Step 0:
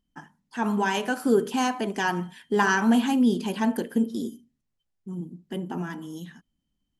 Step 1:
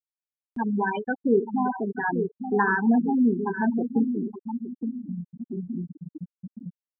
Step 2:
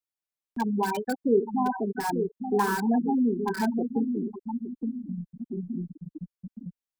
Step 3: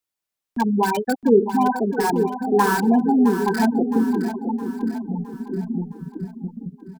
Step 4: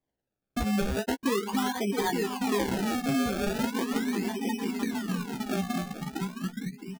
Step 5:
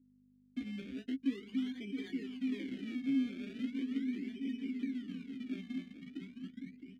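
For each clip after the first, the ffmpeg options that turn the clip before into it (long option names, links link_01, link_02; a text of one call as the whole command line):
ffmpeg -i in.wav -filter_complex "[0:a]asplit=2[link_01][link_02];[link_02]adelay=869,lowpass=frequency=2900:poles=1,volume=-7dB,asplit=2[link_03][link_04];[link_04]adelay=869,lowpass=frequency=2900:poles=1,volume=0.42,asplit=2[link_05][link_06];[link_06]adelay=869,lowpass=frequency=2900:poles=1,volume=0.42,asplit=2[link_07][link_08];[link_08]adelay=869,lowpass=frequency=2900:poles=1,volume=0.42,asplit=2[link_09][link_10];[link_10]adelay=869,lowpass=frequency=2900:poles=1,volume=0.42[link_11];[link_01][link_03][link_05][link_07][link_09][link_11]amix=inputs=6:normalize=0,afftfilt=real='re*gte(hypot(re,im),0.178)':imag='im*gte(hypot(re,im),0.178)':win_size=1024:overlap=0.75,acompressor=mode=upward:threshold=-29dB:ratio=2.5" out.wav
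ffmpeg -i in.wav -filter_complex "[0:a]acrossover=split=260|1400[link_01][link_02][link_03];[link_01]alimiter=level_in=2.5dB:limit=-24dB:level=0:latency=1:release=141,volume=-2.5dB[link_04];[link_03]aeval=exprs='(mod(53.1*val(0)+1,2)-1)/53.1':channel_layout=same[link_05];[link_04][link_02][link_05]amix=inputs=3:normalize=0,asubboost=boost=2.5:cutoff=55" out.wav
ffmpeg -i in.wav -af "aecho=1:1:664|1328|1992|2656|3320:0.299|0.143|0.0688|0.033|0.0158,volume=7dB" out.wav
ffmpeg -i in.wav -filter_complex "[0:a]acompressor=threshold=-25dB:ratio=6,acrusher=samples=31:mix=1:aa=0.000001:lfo=1:lforange=31:lforate=0.39,asplit=2[link_01][link_02];[link_02]adelay=15,volume=-7dB[link_03];[link_01][link_03]amix=inputs=2:normalize=0,volume=-1.5dB" out.wav
ffmpeg -i in.wav -filter_complex "[0:a]aeval=exprs='val(0)+0.00708*(sin(2*PI*50*n/s)+sin(2*PI*2*50*n/s)/2+sin(2*PI*3*50*n/s)/3+sin(2*PI*4*50*n/s)/4+sin(2*PI*5*50*n/s)/5)':channel_layout=same,asplit=2[link_01][link_02];[link_02]acrusher=bits=5:mix=0:aa=0.5,volume=-7.5dB[link_03];[link_01][link_03]amix=inputs=2:normalize=0,asplit=3[link_04][link_05][link_06];[link_04]bandpass=frequency=270:width_type=q:width=8,volume=0dB[link_07];[link_05]bandpass=frequency=2290:width_type=q:width=8,volume=-6dB[link_08];[link_06]bandpass=frequency=3010:width_type=q:width=8,volume=-9dB[link_09];[link_07][link_08][link_09]amix=inputs=3:normalize=0,volume=-5.5dB" out.wav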